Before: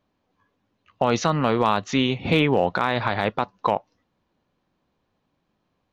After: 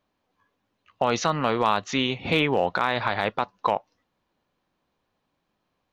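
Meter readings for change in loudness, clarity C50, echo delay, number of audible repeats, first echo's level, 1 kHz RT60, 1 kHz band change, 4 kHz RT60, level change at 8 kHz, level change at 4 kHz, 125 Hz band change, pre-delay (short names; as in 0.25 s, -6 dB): -2.0 dB, none, none, none, none, none, -1.0 dB, none, n/a, 0.0 dB, -6.0 dB, none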